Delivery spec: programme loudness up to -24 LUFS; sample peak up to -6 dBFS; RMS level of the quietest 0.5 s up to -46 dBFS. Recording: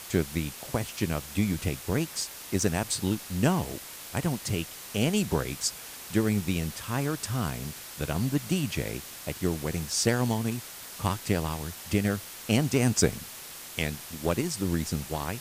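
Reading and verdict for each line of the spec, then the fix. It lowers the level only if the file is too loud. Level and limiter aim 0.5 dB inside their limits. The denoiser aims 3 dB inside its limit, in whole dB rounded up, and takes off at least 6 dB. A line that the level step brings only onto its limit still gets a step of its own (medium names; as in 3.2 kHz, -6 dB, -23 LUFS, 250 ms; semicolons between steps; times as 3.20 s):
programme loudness -29.5 LUFS: pass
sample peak -7.0 dBFS: pass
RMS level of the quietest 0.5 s -43 dBFS: fail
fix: noise reduction 6 dB, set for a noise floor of -43 dBFS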